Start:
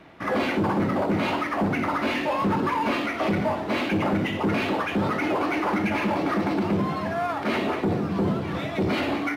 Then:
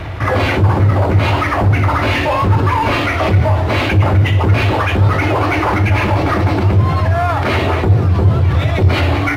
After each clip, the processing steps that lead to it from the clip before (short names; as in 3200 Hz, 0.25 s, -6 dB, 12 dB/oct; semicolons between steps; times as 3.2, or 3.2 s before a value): resonant low shelf 140 Hz +13 dB, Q 3; fast leveller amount 50%; gain +2.5 dB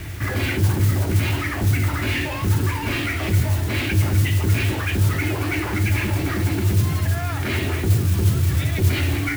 band shelf 770 Hz -10 dB; modulation noise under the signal 17 dB; requantised 6-bit, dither none; gain -6.5 dB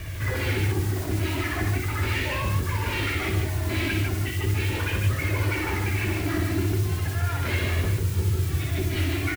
compressor, threshold -19 dBFS, peak gain reduction 7 dB; flange 0.39 Hz, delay 1.7 ms, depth 1.4 ms, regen +32%; on a send: tapped delay 60/148 ms -5.5/-3.5 dB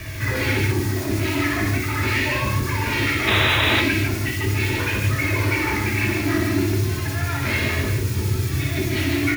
painted sound noise, 3.27–3.81, 410–4000 Hz -25 dBFS; reverb RT60 0.40 s, pre-delay 3 ms, DRR 5.5 dB; gain +4.5 dB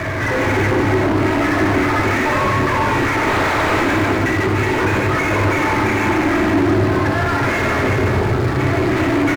median filter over 15 samples; overdrive pedal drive 33 dB, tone 1400 Hz, clips at -9.5 dBFS; echo 0.371 s -5 dB